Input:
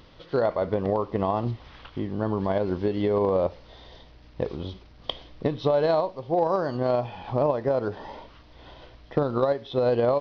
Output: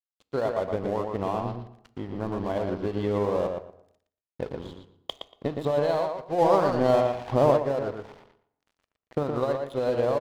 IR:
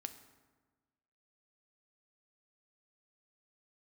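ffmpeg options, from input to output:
-filter_complex "[0:a]aeval=exprs='sgn(val(0))*max(abs(val(0))-0.0119,0)':c=same,asplit=2[a][b];[b]adelay=117,lowpass=f=3.7k:p=1,volume=-4.5dB,asplit=2[c][d];[d]adelay=117,lowpass=f=3.7k:p=1,volume=0.19,asplit=2[e][f];[f]adelay=117,lowpass=f=3.7k:p=1,volume=0.19[g];[a][c][e][g]amix=inputs=4:normalize=0,asplit=3[h][i][j];[h]afade=t=out:st=6.38:d=0.02[k];[i]acontrast=78,afade=t=in:st=6.38:d=0.02,afade=t=out:st=7.56:d=0.02[l];[j]afade=t=in:st=7.56:d=0.02[m];[k][l][m]amix=inputs=3:normalize=0,asplit=2[n][o];[1:a]atrim=start_sample=2205,afade=t=out:st=0.45:d=0.01,atrim=end_sample=20286[p];[o][p]afir=irnorm=-1:irlink=0,volume=0dB[q];[n][q]amix=inputs=2:normalize=0,volume=-7.5dB"

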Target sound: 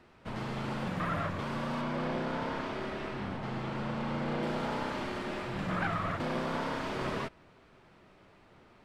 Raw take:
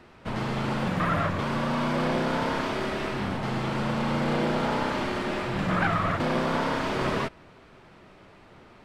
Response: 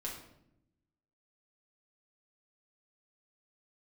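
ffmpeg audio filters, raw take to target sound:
-filter_complex "[0:a]asettb=1/sr,asplit=3[a][b][c];[a]atrim=end=1.814[d];[b]atrim=start=1.81:end=4.43,asetpts=PTS-STARTPTS,afade=t=in:d=0.004:c=qsin,afade=t=out:st=2.616:d=0.004:c=qsin,lowpass=f=4k:p=1[e];[c]atrim=start=4.426[f];[d][e]acrossfade=d=0.004:c1=hsin:c2=qsin[g];[g][f]acrossfade=d=0.004:c1=qsin:c2=hsin,volume=-7.5dB"

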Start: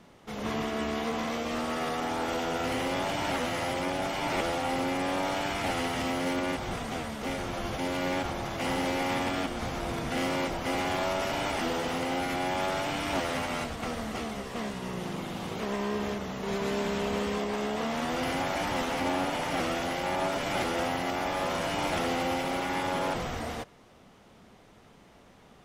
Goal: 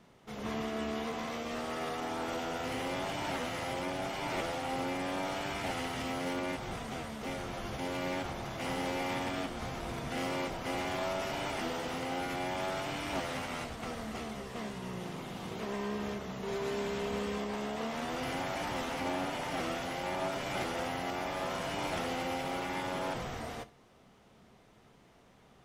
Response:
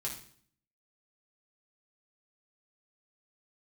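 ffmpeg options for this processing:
-filter_complex "[0:a]asplit=2[a][b];[1:a]atrim=start_sample=2205,atrim=end_sample=3528[c];[b][c]afir=irnorm=-1:irlink=0,volume=-8.5dB[d];[a][d]amix=inputs=2:normalize=0,volume=-7.5dB"

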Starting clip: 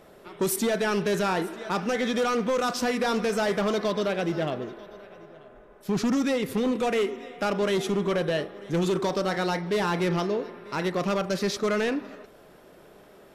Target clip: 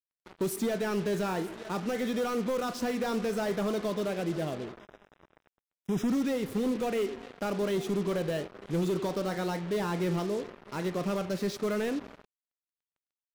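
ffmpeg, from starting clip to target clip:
-filter_complex "[0:a]tiltshelf=f=650:g=3.5,acrusher=bits=5:mix=0:aa=0.5,asettb=1/sr,asplit=3[a][b][c];[a]atrim=end=4.794[d];[b]atrim=start=4.79:end=6.08,asetpts=PTS-STARTPTS,afade=t=in:d=0.004:c=qsin,afade=t=out:st=1.286:d=0.004:c=qsin,asuperstop=centerf=4400:order=12:qfactor=4.6[e];[c]atrim=start=6.076[f];[d][e]acrossfade=d=0.004:c1=hsin:c2=qsin[g];[g][f]acrossfade=d=0.004:c1=qsin:c2=hsin,volume=-6dB"

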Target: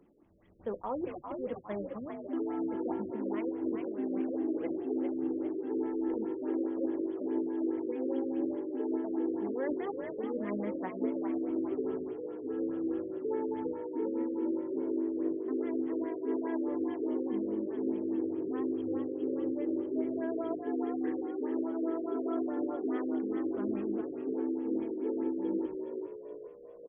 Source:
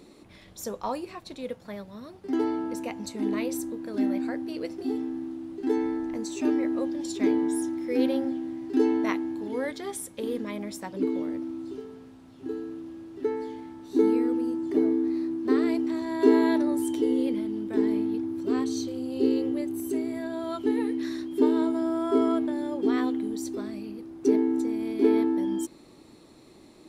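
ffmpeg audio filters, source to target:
-filter_complex "[0:a]highshelf=f=9.3k:g=5,acrossover=split=150[a][b];[b]dynaudnorm=f=410:g=13:m=9dB[c];[a][c]amix=inputs=2:normalize=0,agate=range=-13dB:threshold=-39dB:ratio=16:detection=peak,areverse,acompressor=threshold=-31dB:ratio=20,areverse,equalizer=f=2.4k:t=o:w=0.78:g=-5.5,bandreject=f=60:t=h:w=6,bandreject=f=120:t=h:w=6,asplit=7[d][e][f][g][h][i][j];[e]adelay=401,afreqshift=49,volume=-6dB[k];[f]adelay=802,afreqshift=98,volume=-12dB[l];[g]adelay=1203,afreqshift=147,volume=-18dB[m];[h]adelay=1604,afreqshift=196,volume=-24.1dB[n];[i]adelay=2005,afreqshift=245,volume=-30.1dB[o];[j]adelay=2406,afreqshift=294,volume=-36.1dB[p];[d][k][l][m][n][o][p]amix=inputs=7:normalize=0,aphaser=in_gain=1:out_gain=1:delay=3.5:decay=0.22:speed=1.9:type=triangular,afftfilt=real='re*lt(b*sr/1024,570*pow(3500/570,0.5+0.5*sin(2*PI*4.8*pts/sr)))':imag='im*lt(b*sr/1024,570*pow(3500/570,0.5+0.5*sin(2*PI*4.8*pts/sr)))':win_size=1024:overlap=0.75"

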